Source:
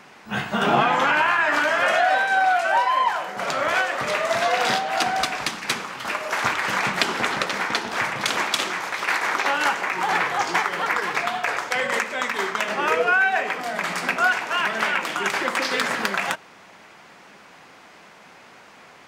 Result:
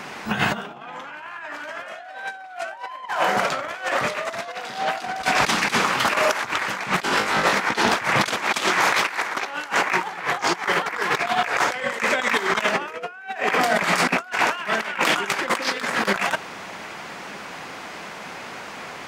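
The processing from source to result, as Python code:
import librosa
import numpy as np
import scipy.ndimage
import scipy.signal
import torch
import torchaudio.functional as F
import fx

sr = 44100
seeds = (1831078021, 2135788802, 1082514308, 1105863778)

y = fx.over_compress(x, sr, threshold_db=-29.0, ratio=-0.5)
y = fx.room_flutter(y, sr, wall_m=3.3, rt60_s=0.34, at=(7.06, 7.52), fade=0.02)
y = F.gain(torch.from_numpy(y), 5.5).numpy()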